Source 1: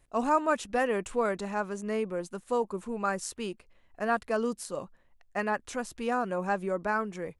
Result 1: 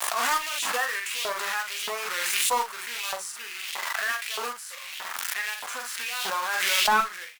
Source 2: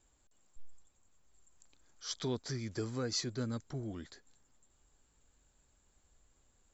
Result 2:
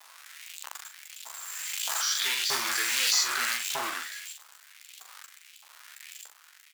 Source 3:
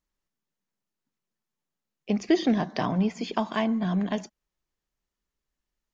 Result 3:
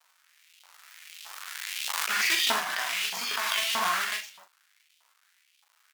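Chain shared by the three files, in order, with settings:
hum removal 94.41 Hz, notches 4
harmonic and percussive parts rebalanced percussive −18 dB
high-shelf EQ 5,900 Hz +6.5 dB
in parallel at 0 dB: downward compressor 12 to 1, threshold −35 dBFS
on the sum: log-companded quantiser 4 bits
surface crackle 240 per second −55 dBFS
auto-filter high-pass saw up 1.6 Hz 880–3,200 Hz
asymmetric clip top −23 dBFS
on a send: ambience of single reflections 12 ms −6.5 dB, 42 ms −6.5 dB
on the sum: background raised ahead of every attack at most 20 dB per second
loudness normalisation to −27 LKFS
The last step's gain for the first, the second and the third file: +0.5, +12.0, +4.0 decibels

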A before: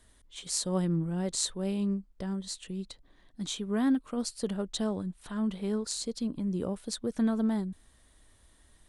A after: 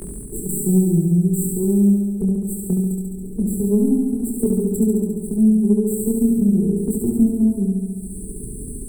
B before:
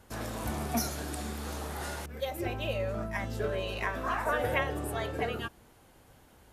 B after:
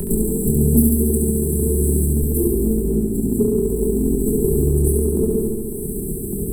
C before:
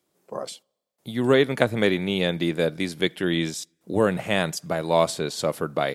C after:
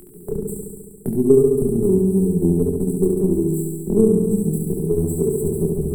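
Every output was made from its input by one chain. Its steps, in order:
lower of the sound and its delayed copy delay 5 ms
brick-wall band-stop 460–7,600 Hz
noise gate with hold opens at −59 dBFS
upward compression, threshold −32 dBFS
chorus effect 0.74 Hz, depth 4.2 ms
transient designer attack +5 dB, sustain −1 dB
flutter between parallel walls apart 11.9 metres, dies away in 1.3 s
multiband upward and downward compressor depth 40%
loudness normalisation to −19 LKFS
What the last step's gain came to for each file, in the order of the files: +13.0, +19.0, +8.5 decibels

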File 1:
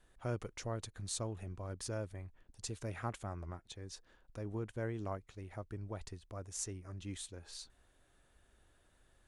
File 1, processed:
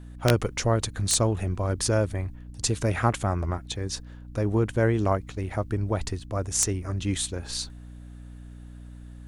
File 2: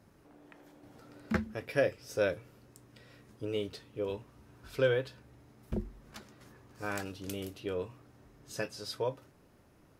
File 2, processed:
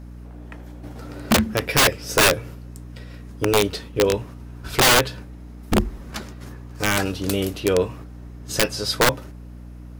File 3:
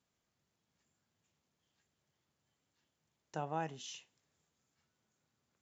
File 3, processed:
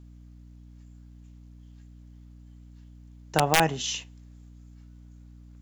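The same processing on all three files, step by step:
noise gate −55 dBFS, range −6 dB
wrap-around overflow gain 26 dB
mains hum 60 Hz, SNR 15 dB
normalise the peak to −9 dBFS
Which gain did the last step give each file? +17.0, +16.5, +17.0 decibels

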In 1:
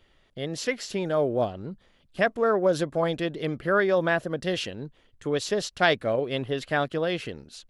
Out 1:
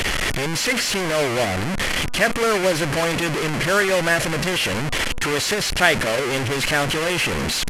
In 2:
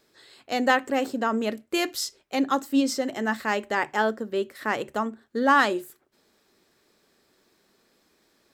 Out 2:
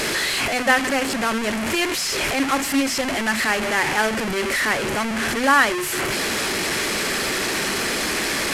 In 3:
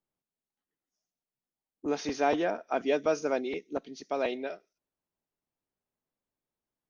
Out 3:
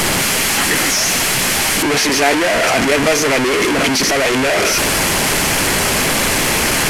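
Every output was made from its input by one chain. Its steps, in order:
linear delta modulator 64 kbit/s, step −19.5 dBFS
parametric band 2,100 Hz +6.5 dB 1.1 octaves
notch filter 3,700 Hz, Q 19
hum removal 244.9 Hz, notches 6
normalise the peak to −1.5 dBFS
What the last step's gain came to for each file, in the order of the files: +2.0, +1.0, +10.0 decibels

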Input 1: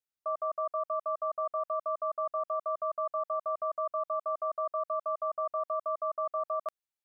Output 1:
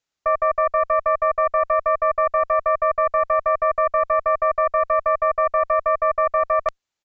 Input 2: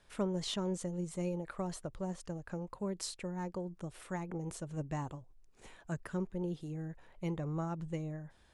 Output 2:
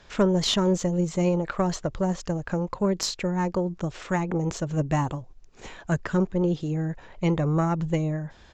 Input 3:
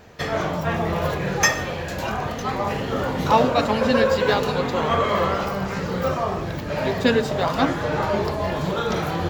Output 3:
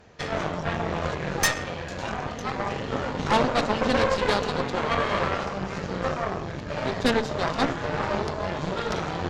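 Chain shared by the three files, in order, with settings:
downsampling to 16,000 Hz
harmonic generator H 6 −12 dB, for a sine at −4 dBFS
normalise the peak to −9 dBFS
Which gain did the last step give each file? +13.0, +14.0, −6.0 decibels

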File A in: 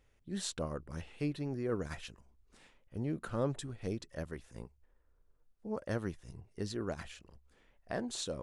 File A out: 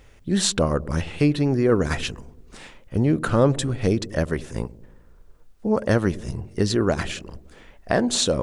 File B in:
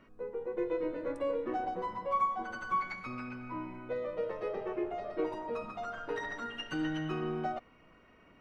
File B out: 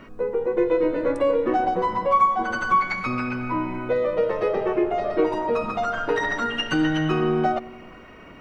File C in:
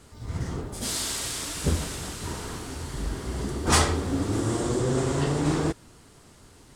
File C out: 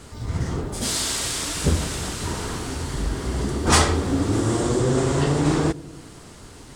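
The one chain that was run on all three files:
parametric band 12,000 Hz −5.5 dB 0.36 octaves
delay with a low-pass on its return 94 ms, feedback 60%, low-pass 460 Hz, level −17.5 dB
in parallel at 0 dB: downward compressor, threshold −39 dBFS
on the sum: loudness normalisation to −23 LKFS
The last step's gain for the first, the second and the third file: +13.5, +10.0, +3.0 decibels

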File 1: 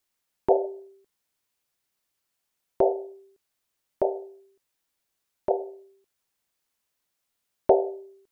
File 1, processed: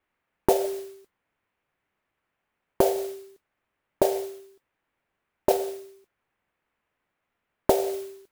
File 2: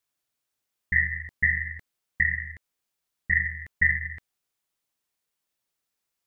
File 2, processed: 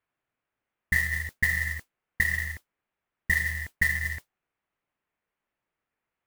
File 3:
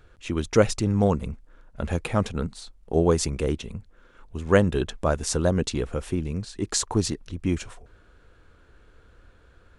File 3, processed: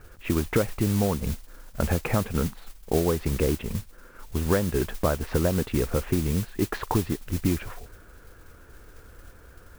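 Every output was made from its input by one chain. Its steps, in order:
low-pass filter 2,400 Hz 24 dB per octave
downward compressor 12 to 1, threshold −25 dBFS
noise that follows the level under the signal 14 dB
loudness normalisation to −27 LKFS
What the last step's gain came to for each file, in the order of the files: +8.5, +4.5, +5.5 decibels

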